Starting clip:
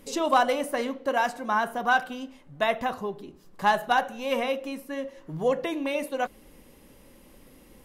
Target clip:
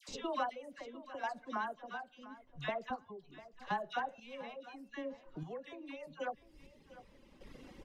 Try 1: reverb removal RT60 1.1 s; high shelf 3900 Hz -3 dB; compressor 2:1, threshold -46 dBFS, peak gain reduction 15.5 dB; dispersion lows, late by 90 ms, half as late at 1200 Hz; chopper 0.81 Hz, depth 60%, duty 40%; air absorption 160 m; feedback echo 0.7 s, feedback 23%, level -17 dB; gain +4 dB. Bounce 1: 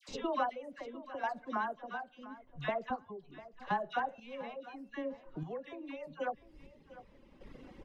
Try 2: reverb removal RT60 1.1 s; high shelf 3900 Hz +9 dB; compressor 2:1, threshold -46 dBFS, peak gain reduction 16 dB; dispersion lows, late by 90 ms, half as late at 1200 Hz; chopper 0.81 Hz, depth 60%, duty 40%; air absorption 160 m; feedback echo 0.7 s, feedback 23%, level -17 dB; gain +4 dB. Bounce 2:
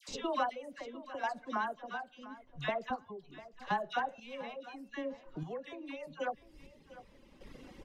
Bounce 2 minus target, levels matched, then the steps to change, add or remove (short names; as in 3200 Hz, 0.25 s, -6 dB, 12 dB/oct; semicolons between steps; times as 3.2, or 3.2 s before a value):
compressor: peak gain reduction -3.5 dB
change: compressor 2:1, threshold -52.5 dBFS, peak gain reduction 19.5 dB